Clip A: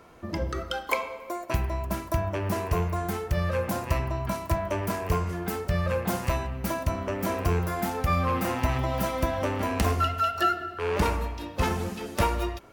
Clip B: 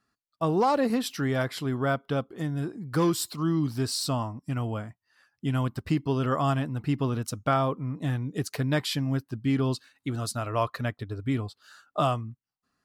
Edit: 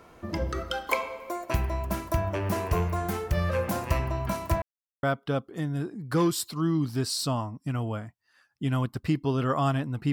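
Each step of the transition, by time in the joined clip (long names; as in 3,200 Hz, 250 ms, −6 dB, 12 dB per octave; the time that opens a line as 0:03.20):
clip A
0:04.62–0:05.03: silence
0:05.03: continue with clip B from 0:01.85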